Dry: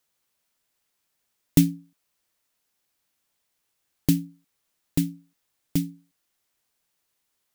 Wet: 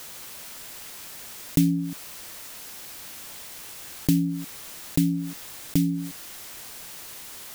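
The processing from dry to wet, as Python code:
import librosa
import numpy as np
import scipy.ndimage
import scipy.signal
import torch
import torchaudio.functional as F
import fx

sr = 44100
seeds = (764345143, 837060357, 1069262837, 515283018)

y = fx.env_flatten(x, sr, amount_pct=70)
y = F.gain(torch.from_numpy(y), -4.5).numpy()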